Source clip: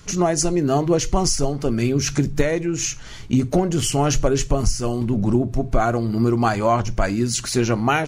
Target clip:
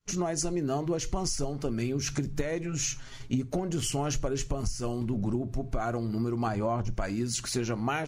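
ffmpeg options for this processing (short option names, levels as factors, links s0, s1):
-filter_complex "[0:a]agate=range=0.0224:threshold=0.0251:ratio=3:detection=peak,asettb=1/sr,asplit=3[s0][s1][s2];[s0]atrim=end=2.634[s3];[s1]atrim=start=2.63:end=3.42,asetpts=PTS-STARTPTS,afade=t=in:d=0.004:c=qsin,afade=t=out:st=0.786:d=0.004:c=qsin,aecho=1:1:7.5:0.8,atrim=end_sample=34839[s4];[s2]atrim=start=3.416[s5];[s3][s4]acrossfade=d=0.004:c1=hsin:c2=qsin[s6];[s6][s5]acrossfade=d=0.004:c1=qsin:c2=hsin,asettb=1/sr,asplit=3[s7][s8][s9];[s7]atrim=end=6.474[s10];[s8]atrim=start=6.47:end=6.94,asetpts=PTS-STARTPTS,afade=t=in:d=0.004:c=qsin,afade=t=out:st=0.466:d=0.004:c=qsin,tiltshelf=f=970:g=5[s11];[s9]atrim=start=6.936[s12];[s10][s11]acrossfade=d=0.004:c1=hsin:c2=qsin[s13];[s13][s12]acrossfade=d=0.004:c1=qsin:c2=hsin,acompressor=threshold=0.126:ratio=5,volume=0.422"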